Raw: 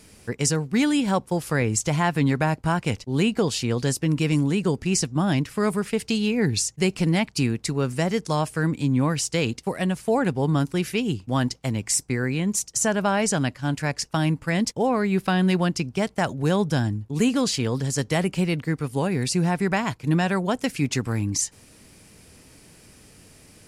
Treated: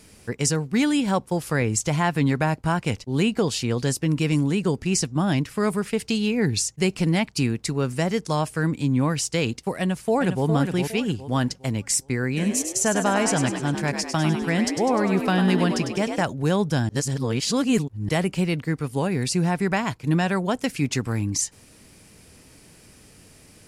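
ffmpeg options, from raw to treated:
ffmpeg -i in.wav -filter_complex "[0:a]asplit=2[link_01][link_02];[link_02]afade=type=in:start_time=9.79:duration=0.01,afade=type=out:start_time=10.46:duration=0.01,aecho=0:1:410|820|1230|1640:0.473151|0.165603|0.057961|0.0202864[link_03];[link_01][link_03]amix=inputs=2:normalize=0,asplit=3[link_04][link_05][link_06];[link_04]afade=type=out:start_time=12.36:duration=0.02[link_07];[link_05]asplit=8[link_08][link_09][link_10][link_11][link_12][link_13][link_14][link_15];[link_09]adelay=100,afreqshift=59,volume=-7dB[link_16];[link_10]adelay=200,afreqshift=118,volume=-12dB[link_17];[link_11]adelay=300,afreqshift=177,volume=-17.1dB[link_18];[link_12]adelay=400,afreqshift=236,volume=-22.1dB[link_19];[link_13]adelay=500,afreqshift=295,volume=-27.1dB[link_20];[link_14]adelay=600,afreqshift=354,volume=-32.2dB[link_21];[link_15]adelay=700,afreqshift=413,volume=-37.2dB[link_22];[link_08][link_16][link_17][link_18][link_19][link_20][link_21][link_22]amix=inputs=8:normalize=0,afade=type=in:start_time=12.36:duration=0.02,afade=type=out:start_time=16.22:duration=0.02[link_23];[link_06]afade=type=in:start_time=16.22:duration=0.02[link_24];[link_07][link_23][link_24]amix=inputs=3:normalize=0,asplit=3[link_25][link_26][link_27];[link_25]atrim=end=16.892[link_28];[link_26]atrim=start=16.888:end=18.092,asetpts=PTS-STARTPTS,areverse[link_29];[link_27]atrim=start=18.088[link_30];[link_28][link_29]acrossfade=duration=0.004:curve1=hsin:curve2=hsin[link_31];[link_31][link_30]acrossfade=duration=0.004:curve1=hsin:curve2=hsin" out.wav

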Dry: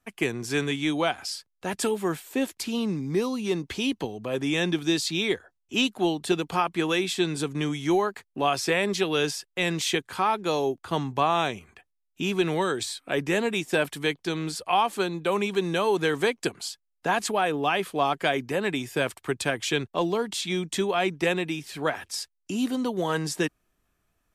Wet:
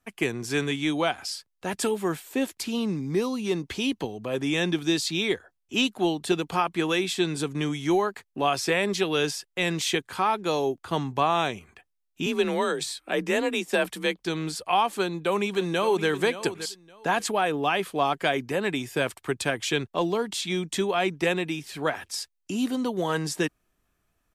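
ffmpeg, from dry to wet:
ffmpeg -i in.wav -filter_complex "[0:a]asettb=1/sr,asplit=3[link_01][link_02][link_03];[link_01]atrim=end=12.264[link_04];[link_02]atrim=start=12.26:end=14.25,asetpts=PTS-STARTPTS,afade=type=in:duration=0.004:curve=qsin,afade=type=out:start_time=1.986:duration=0.004:curve=qsin,afreqshift=36[link_05];[link_03]atrim=start=14.246[link_06];[link_04][link_05]acrossfade=duration=0.004:curve1=hsin:curve2=qsin[link_07];[link_07][link_06]acrossfade=duration=0.004:curve1=qsin:curve2=hsin,asplit=2[link_08][link_09];[link_09]afade=type=in:start_time=14.99:duration=0.01,afade=type=out:start_time=16.08:duration=0.01,aecho=0:1:570|1140:0.237137|0.0474275[link_10];[link_08][link_10]amix=inputs=2:normalize=0" out.wav

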